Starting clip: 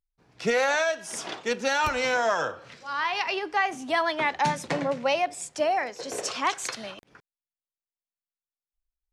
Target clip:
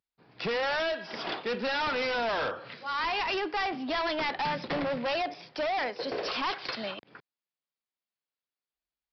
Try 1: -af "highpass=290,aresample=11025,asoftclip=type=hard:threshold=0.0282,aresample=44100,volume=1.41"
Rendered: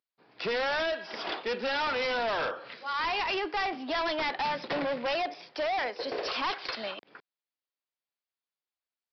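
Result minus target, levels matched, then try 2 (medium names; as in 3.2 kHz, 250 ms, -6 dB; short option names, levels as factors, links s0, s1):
125 Hz band -5.5 dB
-af "highpass=130,aresample=11025,asoftclip=type=hard:threshold=0.0282,aresample=44100,volume=1.41"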